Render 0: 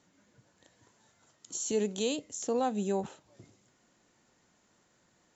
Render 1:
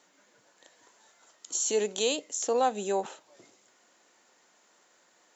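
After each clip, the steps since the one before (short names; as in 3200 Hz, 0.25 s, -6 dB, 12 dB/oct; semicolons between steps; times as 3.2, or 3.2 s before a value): HPF 450 Hz 12 dB/oct; gain +6.5 dB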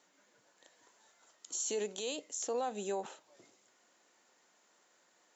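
limiter -22 dBFS, peak gain reduction 7 dB; gain -5.5 dB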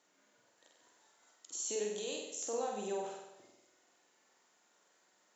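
flutter echo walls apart 8.2 m, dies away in 0.88 s; gain -4.5 dB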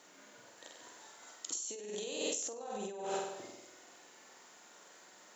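negative-ratio compressor -47 dBFS, ratio -1; gain +6.5 dB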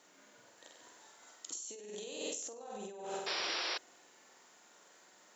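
painted sound noise, 3.26–3.78, 310–5800 Hz -33 dBFS; gain -4 dB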